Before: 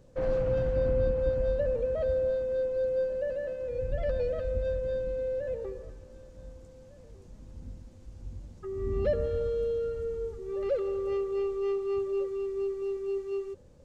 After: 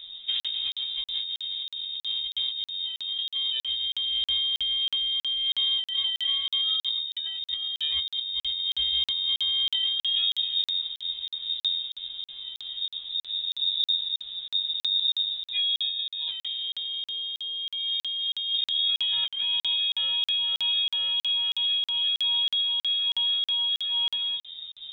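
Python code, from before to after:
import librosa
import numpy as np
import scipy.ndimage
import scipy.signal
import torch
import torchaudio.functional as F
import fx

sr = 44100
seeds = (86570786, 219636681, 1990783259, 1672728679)

p1 = fx.stretch_vocoder(x, sr, factor=1.8)
p2 = fx.low_shelf(p1, sr, hz=290.0, db=4.5)
p3 = fx.doubler(p2, sr, ms=24.0, db=-7)
p4 = 10.0 ** (-20.5 / 20.0) * (np.abs((p3 / 10.0 ** (-20.5 / 20.0) + 3.0) % 4.0 - 2.0) - 1.0)
p5 = p3 + F.gain(torch.from_numpy(p4), -8.0).numpy()
p6 = fx.over_compress(p5, sr, threshold_db=-31.0, ratio=-1.0)
p7 = fx.freq_invert(p6, sr, carrier_hz=3700)
p8 = fx.low_shelf(p7, sr, hz=91.0, db=11.5)
p9 = fx.buffer_crackle(p8, sr, first_s=0.4, period_s=0.32, block=2048, kind='zero')
y = F.gain(torch.from_numpy(p9), 2.5).numpy()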